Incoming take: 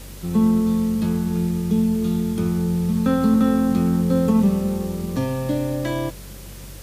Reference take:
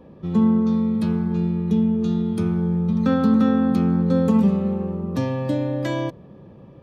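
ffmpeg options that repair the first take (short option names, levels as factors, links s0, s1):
-af "bandreject=f=47.6:t=h:w=4,bandreject=f=95.2:t=h:w=4,bandreject=f=142.8:t=h:w=4,afwtdn=0.0071"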